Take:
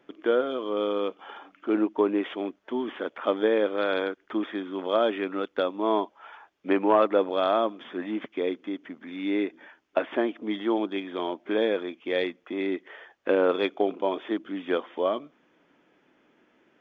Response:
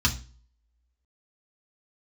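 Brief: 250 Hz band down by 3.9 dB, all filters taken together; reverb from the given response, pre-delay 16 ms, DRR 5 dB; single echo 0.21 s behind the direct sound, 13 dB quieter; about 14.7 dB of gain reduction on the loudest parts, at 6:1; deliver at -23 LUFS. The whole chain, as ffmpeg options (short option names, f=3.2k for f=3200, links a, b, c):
-filter_complex "[0:a]equalizer=f=250:t=o:g=-5.5,acompressor=threshold=-34dB:ratio=6,aecho=1:1:210:0.224,asplit=2[a][b];[1:a]atrim=start_sample=2205,adelay=16[c];[b][c]afir=irnorm=-1:irlink=0,volume=-17.5dB[d];[a][d]amix=inputs=2:normalize=0,volume=15.5dB"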